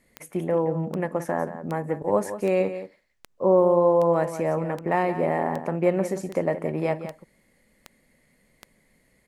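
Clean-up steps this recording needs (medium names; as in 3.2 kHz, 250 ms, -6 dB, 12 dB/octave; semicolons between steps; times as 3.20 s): de-click; inverse comb 176 ms -11.5 dB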